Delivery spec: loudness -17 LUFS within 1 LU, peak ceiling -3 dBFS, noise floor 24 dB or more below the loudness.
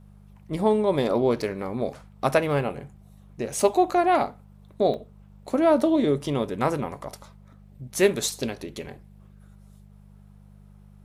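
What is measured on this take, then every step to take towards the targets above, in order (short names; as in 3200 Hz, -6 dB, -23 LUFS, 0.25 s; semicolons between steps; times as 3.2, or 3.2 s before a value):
dropouts 2; longest dropout 2.0 ms; hum 50 Hz; harmonics up to 200 Hz; hum level -47 dBFS; loudness -24.5 LUFS; peak -6.5 dBFS; loudness target -17.0 LUFS
-> interpolate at 4.94/8.4, 2 ms; de-hum 50 Hz, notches 4; gain +7.5 dB; limiter -3 dBFS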